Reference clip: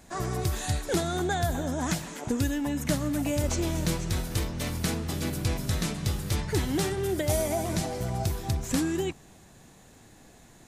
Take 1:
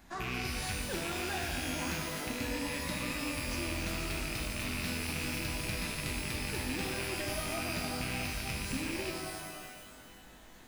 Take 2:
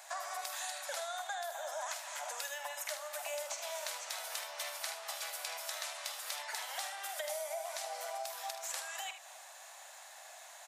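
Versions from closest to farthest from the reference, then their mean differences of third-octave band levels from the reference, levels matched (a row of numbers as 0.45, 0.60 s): 1, 2; 8.0, 18.0 dB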